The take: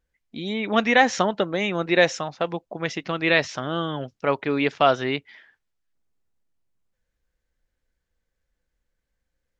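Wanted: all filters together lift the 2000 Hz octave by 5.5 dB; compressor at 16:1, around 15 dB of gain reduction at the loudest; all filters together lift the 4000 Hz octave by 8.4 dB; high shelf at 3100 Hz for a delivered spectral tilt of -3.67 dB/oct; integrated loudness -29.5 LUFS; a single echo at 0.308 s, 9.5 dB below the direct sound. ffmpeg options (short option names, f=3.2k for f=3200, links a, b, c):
-af "equalizer=f=2k:t=o:g=3,highshelf=f=3.1k:g=6.5,equalizer=f=4k:t=o:g=5,acompressor=threshold=-23dB:ratio=16,aecho=1:1:308:0.335,volume=-1.5dB"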